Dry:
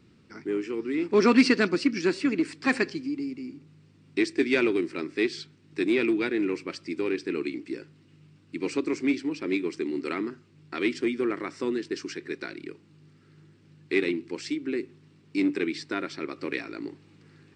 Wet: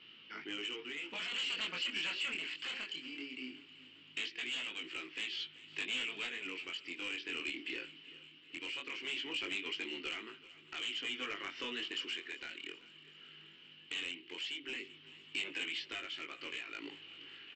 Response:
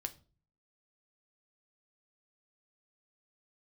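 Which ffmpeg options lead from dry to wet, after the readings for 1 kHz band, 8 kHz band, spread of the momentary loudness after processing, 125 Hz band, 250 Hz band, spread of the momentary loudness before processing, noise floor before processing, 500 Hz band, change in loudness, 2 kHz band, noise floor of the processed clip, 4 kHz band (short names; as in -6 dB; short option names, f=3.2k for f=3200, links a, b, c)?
-14.0 dB, -7.0 dB, 15 LU, -22.0 dB, -24.5 dB, 14 LU, -58 dBFS, -23.5 dB, -12.0 dB, -7.0 dB, -59 dBFS, +2.0 dB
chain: -filter_complex "[0:a]highpass=f=1.2k:p=1,afftfilt=real='re*lt(hypot(re,im),0.1)':imag='im*lt(hypot(re,im),0.1)':win_size=1024:overlap=0.75,acompressor=threshold=-43dB:ratio=4,flanger=delay=18.5:depth=6.3:speed=0.19,lowpass=f=3k:t=q:w=14,aresample=16000,asoftclip=type=tanh:threshold=-36dB,aresample=44100,tremolo=f=0.52:d=0.4,asplit=2[a][b];[b]aecho=0:1:386|772|1158|1544|1930:0.112|0.0628|0.0352|0.0197|0.011[c];[a][c]amix=inputs=2:normalize=0,volume=5.5dB"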